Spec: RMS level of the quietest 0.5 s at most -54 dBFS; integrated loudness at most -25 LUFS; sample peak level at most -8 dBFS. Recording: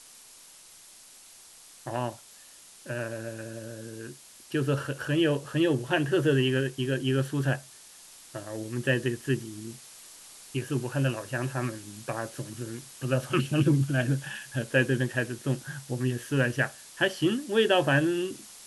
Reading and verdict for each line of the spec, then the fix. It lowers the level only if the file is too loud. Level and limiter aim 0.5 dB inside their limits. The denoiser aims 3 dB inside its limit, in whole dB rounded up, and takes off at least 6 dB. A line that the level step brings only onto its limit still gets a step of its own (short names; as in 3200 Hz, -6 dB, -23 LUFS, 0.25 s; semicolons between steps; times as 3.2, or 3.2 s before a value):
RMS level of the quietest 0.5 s -52 dBFS: fail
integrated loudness -28.5 LUFS: OK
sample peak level -10.0 dBFS: OK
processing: denoiser 6 dB, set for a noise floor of -52 dBFS